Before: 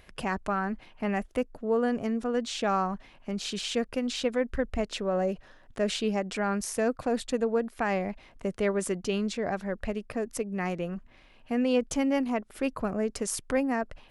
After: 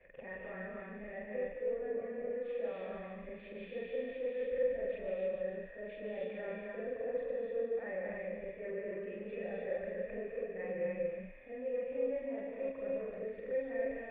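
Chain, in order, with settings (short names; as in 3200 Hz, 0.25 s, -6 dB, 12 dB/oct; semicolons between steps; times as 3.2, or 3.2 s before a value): short-time reversal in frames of 96 ms; reverse; compressor 6:1, threshold -42 dBFS, peak gain reduction 18 dB; reverse; sine folder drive 7 dB, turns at -29 dBFS; vocal tract filter e; on a send: thin delay 0.146 s, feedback 57%, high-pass 1700 Hz, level -4.5 dB; on the sum: non-linear reverb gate 0.32 s rising, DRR -1.5 dB; gain +2.5 dB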